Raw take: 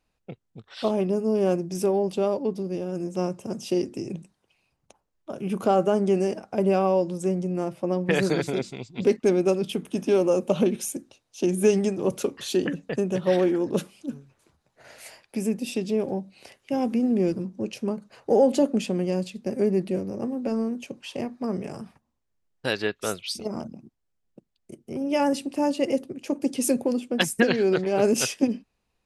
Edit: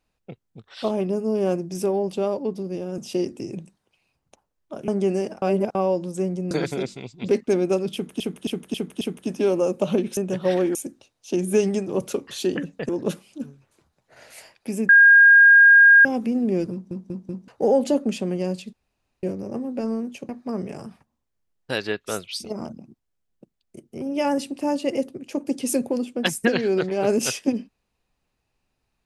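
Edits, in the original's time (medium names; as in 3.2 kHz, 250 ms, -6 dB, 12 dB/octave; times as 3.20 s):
2.98–3.55 s: delete
5.45–5.94 s: delete
6.48–6.81 s: reverse
7.57–8.27 s: delete
9.69–9.96 s: loop, 5 plays
12.99–13.57 s: move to 10.85 s
15.57–16.73 s: bleep 1.62 kHz -8 dBFS
17.40 s: stutter in place 0.19 s, 4 plays
19.41–19.91 s: room tone
20.97–21.24 s: delete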